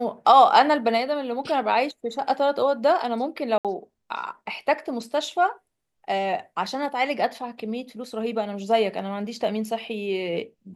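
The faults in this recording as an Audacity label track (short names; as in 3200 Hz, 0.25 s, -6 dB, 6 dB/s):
3.580000	3.650000	gap 67 ms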